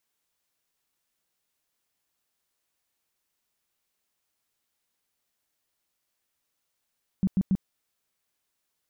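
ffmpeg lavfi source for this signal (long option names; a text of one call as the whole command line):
ffmpeg -f lavfi -i "aevalsrc='0.112*sin(2*PI*190*mod(t,0.14))*lt(mod(t,0.14),8/190)':duration=0.42:sample_rate=44100" out.wav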